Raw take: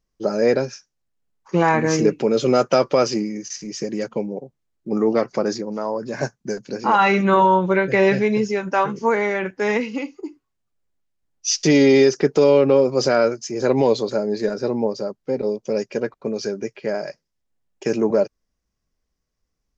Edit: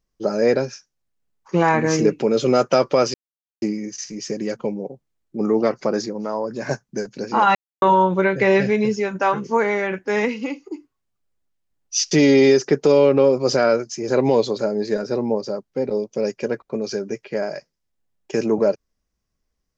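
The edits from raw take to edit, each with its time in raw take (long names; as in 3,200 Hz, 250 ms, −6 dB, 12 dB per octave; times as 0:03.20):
0:03.14: splice in silence 0.48 s
0:07.07–0:07.34: silence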